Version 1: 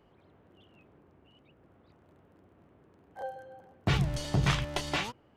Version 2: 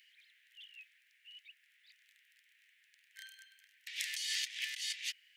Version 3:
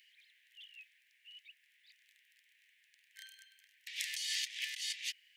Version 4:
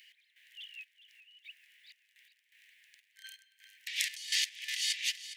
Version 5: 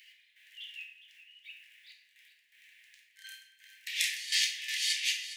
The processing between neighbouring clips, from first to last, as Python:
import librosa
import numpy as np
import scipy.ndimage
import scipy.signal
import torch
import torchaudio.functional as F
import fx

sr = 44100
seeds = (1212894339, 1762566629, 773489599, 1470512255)

y1 = scipy.signal.sosfilt(scipy.signal.butter(12, 1800.0, 'highpass', fs=sr, output='sos'), x)
y1 = fx.over_compress(y1, sr, threshold_db=-47.0, ratio=-1.0)
y1 = y1 * librosa.db_to_amplitude(5.5)
y2 = fx.peak_eq(y1, sr, hz=1300.0, db=-13.5, octaves=0.31)
y3 = fx.step_gate(y2, sr, bpm=125, pattern='x..xxxx..', floor_db=-12.0, edge_ms=4.5)
y3 = fx.echo_feedback(y3, sr, ms=411, feedback_pct=36, wet_db=-14.0)
y3 = y3 * librosa.db_to_amplitude(7.0)
y4 = fx.room_shoebox(y3, sr, seeds[0], volume_m3=210.0, walls='mixed', distance_m=1.1)